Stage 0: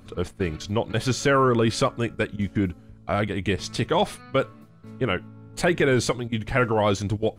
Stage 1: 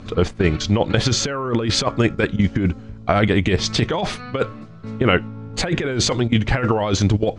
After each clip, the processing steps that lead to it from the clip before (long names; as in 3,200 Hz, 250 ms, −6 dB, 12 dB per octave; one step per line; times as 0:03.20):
low-pass filter 6,700 Hz 24 dB per octave
compressor whose output falls as the input rises −24 dBFS, ratio −0.5
level +8 dB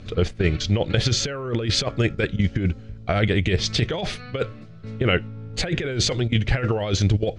octave-band graphic EQ 250/1,000/8,000 Hz −7/−12/−5 dB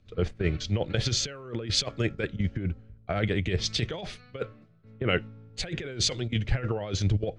multiband upward and downward expander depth 70%
level −7 dB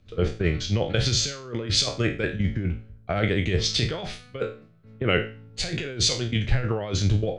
peak hold with a decay on every bin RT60 0.36 s
level +2.5 dB